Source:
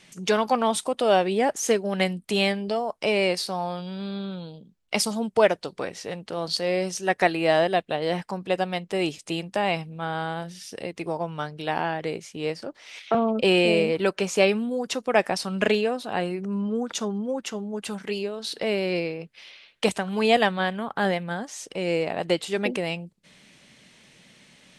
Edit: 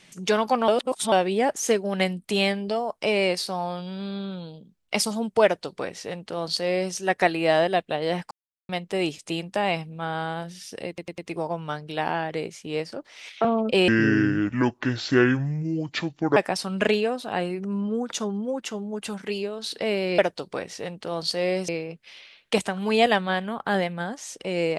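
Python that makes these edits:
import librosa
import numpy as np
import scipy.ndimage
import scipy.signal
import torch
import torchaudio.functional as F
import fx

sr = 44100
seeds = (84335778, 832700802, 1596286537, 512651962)

y = fx.edit(x, sr, fx.reverse_span(start_s=0.68, length_s=0.44),
    fx.duplicate(start_s=5.44, length_s=1.5, to_s=18.99),
    fx.silence(start_s=8.31, length_s=0.38),
    fx.stutter(start_s=10.88, slice_s=0.1, count=4),
    fx.speed_span(start_s=13.58, length_s=1.59, speed=0.64), tone=tone)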